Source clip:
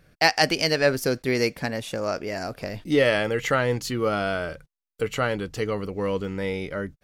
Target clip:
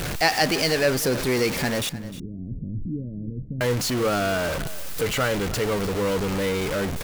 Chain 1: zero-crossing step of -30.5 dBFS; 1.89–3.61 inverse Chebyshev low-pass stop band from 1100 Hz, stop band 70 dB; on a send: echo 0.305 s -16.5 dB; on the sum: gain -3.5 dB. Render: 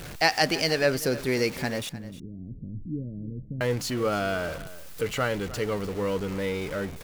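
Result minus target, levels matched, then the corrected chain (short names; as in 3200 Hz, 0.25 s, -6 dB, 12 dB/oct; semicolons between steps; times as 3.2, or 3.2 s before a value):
zero-crossing step: distortion -9 dB
zero-crossing step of -19 dBFS; 1.89–3.61 inverse Chebyshev low-pass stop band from 1100 Hz, stop band 70 dB; on a send: echo 0.305 s -16.5 dB; on the sum: gain -3.5 dB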